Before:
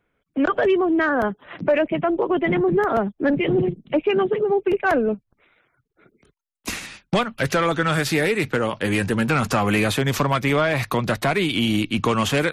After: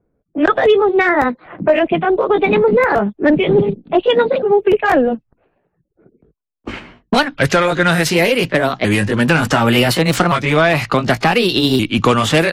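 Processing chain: repeated pitch sweeps +4 st, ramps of 1.474 s; low-pass opened by the level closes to 530 Hz, open at -18.5 dBFS; gain +8 dB

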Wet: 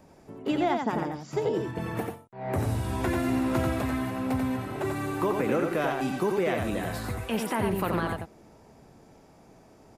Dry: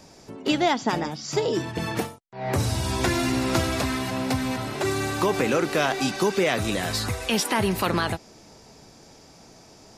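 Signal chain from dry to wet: bell 5200 Hz -15 dB 1.7 oct; on a send: echo 89 ms -4.5 dB; on the sum: gain -4 dB

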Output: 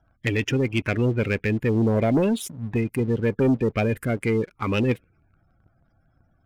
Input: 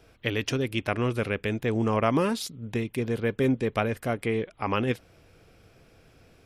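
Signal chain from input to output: spectral gate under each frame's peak -20 dB strong; envelope phaser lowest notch 430 Hz, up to 1200 Hz, full sweep at -21.5 dBFS; sample leveller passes 2

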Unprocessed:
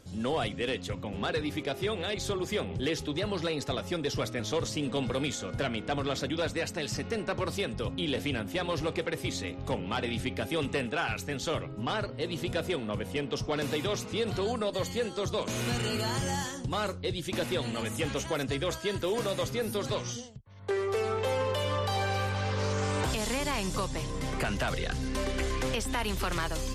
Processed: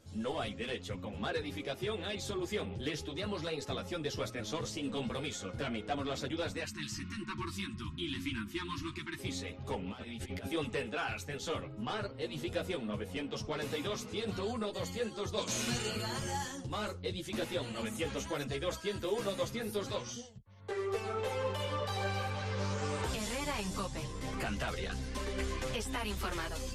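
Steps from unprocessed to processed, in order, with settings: 6.64–9.19 spectral delete 380–900 Hz; 9.91–10.48 negative-ratio compressor -36 dBFS, ratio -0.5; 15.36–15.89 bell 5900 Hz +12.5 dB -> +5.5 dB 1.6 oct; ensemble effect; gain -2.5 dB

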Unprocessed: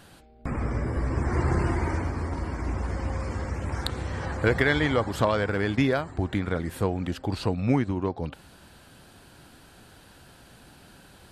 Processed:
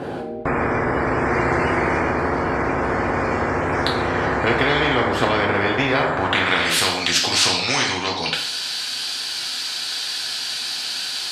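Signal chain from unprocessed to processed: band-pass sweep 410 Hz -> 4600 Hz, 5.87–6.85; two-slope reverb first 0.46 s, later 1.6 s, from -24 dB, DRR -2 dB; spectral compressor 4:1; gain +9 dB

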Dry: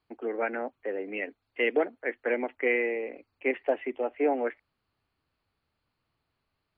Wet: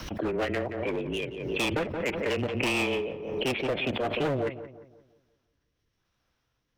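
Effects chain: rotary speaker horn 6.7 Hz, later 0.85 Hz, at 2.99; frequency shift -140 Hz; hard clip -30 dBFS, distortion -7 dB; formant shift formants +5 st; darkening echo 0.175 s, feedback 42%, low-pass 1500 Hz, level -12 dB; backwards sustainer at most 44 dB/s; gain +5 dB

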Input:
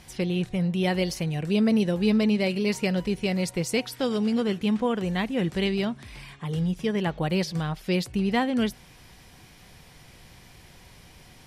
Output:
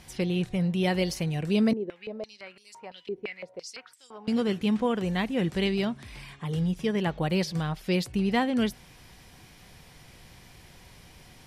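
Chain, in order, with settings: 1.73–4.28 stepped band-pass 5.9 Hz 380–7900 Hz; gain -1 dB

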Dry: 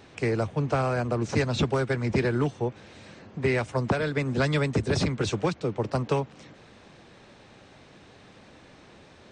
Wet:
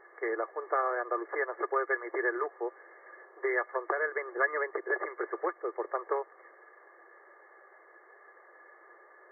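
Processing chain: brick-wall FIR band-pass 330–2200 Hz; small resonant body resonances 1200/1700 Hz, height 15 dB, ringing for 50 ms; gain -5 dB

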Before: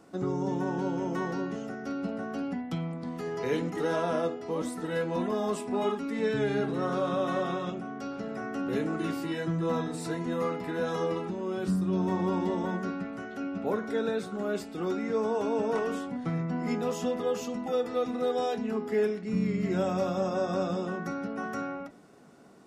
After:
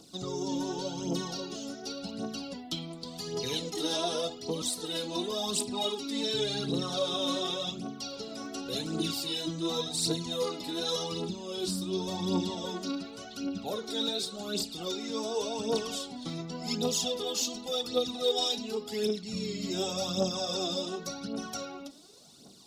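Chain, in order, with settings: resonant high shelf 2700 Hz +13.5 dB, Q 3; phaser 0.89 Hz, delay 3.7 ms, feedback 61%; gain -5 dB

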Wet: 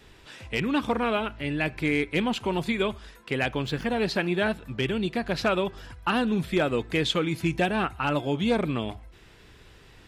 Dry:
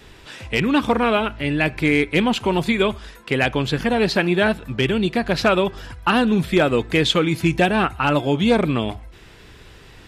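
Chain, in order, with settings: 3.49–4.02 median filter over 3 samples; gain -7.5 dB

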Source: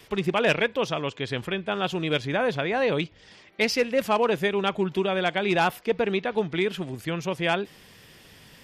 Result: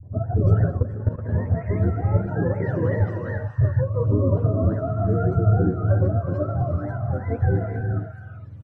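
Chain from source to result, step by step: spectrum mirrored in octaves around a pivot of 510 Hz; 2.26–3 weighting filter D; limiter -17 dBFS, peak gain reduction 8 dB; tilt -3.5 dB/oct; three bands offset in time lows, mids, highs 30/360 ms, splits 160/1000 Hz; non-linear reverb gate 0.48 s rising, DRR 5.5 dB; 0.77–1.29 level quantiser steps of 14 dB; gain -1.5 dB

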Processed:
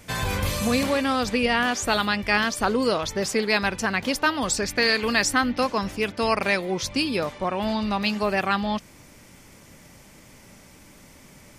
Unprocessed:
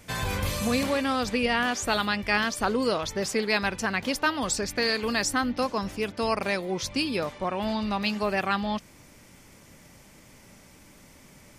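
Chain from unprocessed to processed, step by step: 4.55–6.75 dynamic EQ 2200 Hz, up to +4 dB, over -39 dBFS, Q 0.93; gain +3 dB

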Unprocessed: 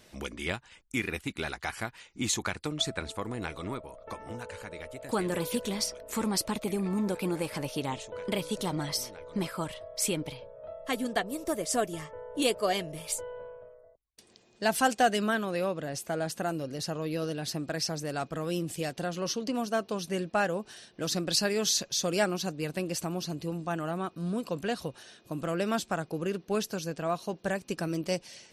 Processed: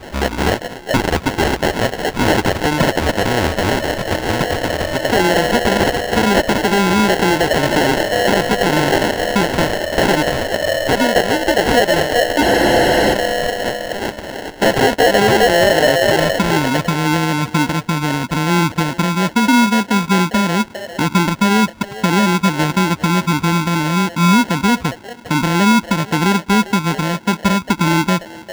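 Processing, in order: resonant low shelf 110 Hz +6 dB, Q 1.5; in parallel at 0 dB: compressor, threshold -39 dBFS, peak gain reduction 18.5 dB; on the sum: low-pass sweep 4700 Hz -> 230 Hz, 15.06–16.2; on a send: delay with a stepping band-pass 0.4 s, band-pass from 760 Hz, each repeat 0.7 oct, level -2 dB; on the sum: sample-rate reducer 1200 Hz, jitter 0%; overdrive pedal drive 8 dB, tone 4400 Hz, clips at -11 dBFS; maximiser +19 dB; spectral freeze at 12.45, 0.69 s; gain -2 dB

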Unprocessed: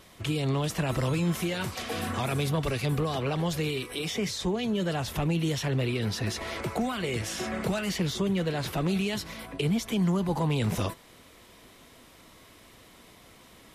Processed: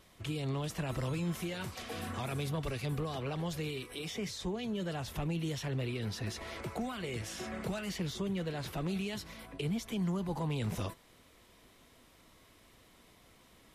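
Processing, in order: low shelf 65 Hz +5.5 dB; gain -8.5 dB

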